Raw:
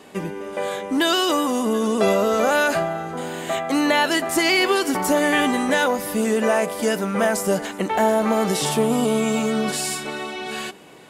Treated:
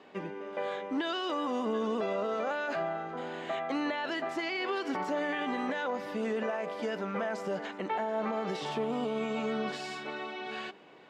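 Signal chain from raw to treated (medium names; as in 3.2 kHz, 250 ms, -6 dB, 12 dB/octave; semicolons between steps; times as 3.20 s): high-pass 330 Hz 6 dB/octave; peak limiter -16.5 dBFS, peak gain reduction 9 dB; distance through air 210 m; trim -6.5 dB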